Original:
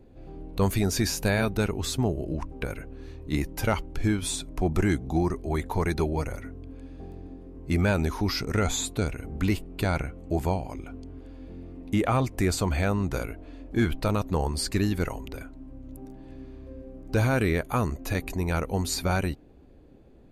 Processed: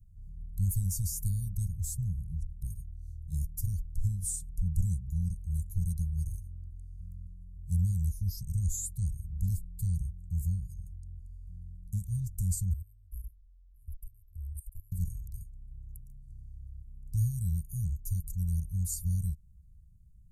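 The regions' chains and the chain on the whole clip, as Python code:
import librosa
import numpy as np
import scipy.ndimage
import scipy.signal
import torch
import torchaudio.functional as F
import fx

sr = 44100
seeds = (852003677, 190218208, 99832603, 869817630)

y = fx.chain(x, sr, fx.cheby2_bandstop(low_hz=130.0, high_hz=6100.0, order=4, stop_db=40),
    fx.level_steps(step_db=19), at=(12.73, 14.92))
y = scipy.signal.sosfilt(scipy.signal.cheby2(4, 60, [310.0, 2700.0], 'bandstop', fs=sr, output='sos'), y)
y = fx.peak_eq(y, sr, hz=180.0, db=15.0, octaves=0.54)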